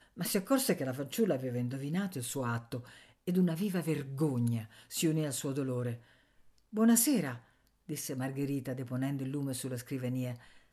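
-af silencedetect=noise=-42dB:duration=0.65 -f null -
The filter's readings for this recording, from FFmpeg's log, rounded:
silence_start: 5.96
silence_end: 6.73 | silence_duration: 0.77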